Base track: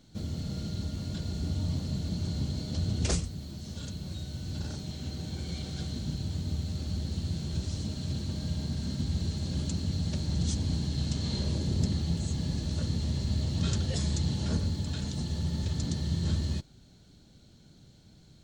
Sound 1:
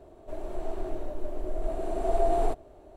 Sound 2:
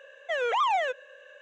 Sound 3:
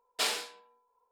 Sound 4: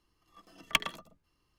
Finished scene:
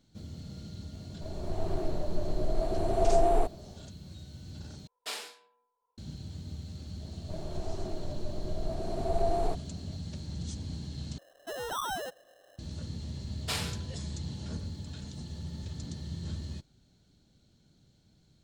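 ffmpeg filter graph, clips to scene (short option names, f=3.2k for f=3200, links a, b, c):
-filter_complex "[1:a]asplit=2[a][b];[3:a]asplit=2[c][d];[0:a]volume=-8.5dB[e];[a]dynaudnorm=f=390:g=3:m=9dB[f];[2:a]acrusher=samples=19:mix=1:aa=0.000001[g];[e]asplit=3[h][i][j];[h]atrim=end=4.874[k];[c]atrim=end=1.11,asetpts=PTS-STARTPTS,volume=-8dB[l];[i]atrim=start=5.976:end=11.184[m];[g]atrim=end=1.41,asetpts=PTS-STARTPTS,volume=-9.5dB[n];[j]atrim=start=12.586[o];[f]atrim=end=2.96,asetpts=PTS-STARTPTS,volume=-7.5dB,afade=t=in:d=0.004:c=hsin,afade=t=out:st=2.956:d=0.004:c=hsin,adelay=930[p];[b]atrim=end=2.96,asetpts=PTS-STARTPTS,volume=-4dB,afade=t=in:d=0.004:c=hsin,afade=t=out:st=2.956:d=0.004:c=hsin,adelay=7010[q];[d]atrim=end=1.11,asetpts=PTS-STARTPTS,volume=-4dB,afade=t=in:d=0.004:c=hsin,afade=t=out:st=1.106:d=0.004:c=hsin,adelay=13290[r];[k][l]acrossfade=d=0.004:c1=hsin:c2=hsin[s];[s][m]acrossfade=d=0.004:c1=hsin:c2=hsin[t];[t][n]acrossfade=d=0.004:c1=hsin:c2=hsin[u];[u][o]acrossfade=d=0.004:c1=hsin:c2=hsin[v];[v][p][q][r]amix=inputs=4:normalize=0"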